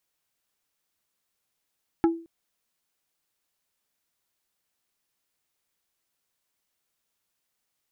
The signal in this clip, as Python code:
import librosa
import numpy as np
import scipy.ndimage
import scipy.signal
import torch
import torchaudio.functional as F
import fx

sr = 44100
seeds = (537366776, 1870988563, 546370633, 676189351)

y = fx.strike_wood(sr, length_s=0.22, level_db=-14.5, body='plate', hz=332.0, decay_s=0.38, tilt_db=7.0, modes=5)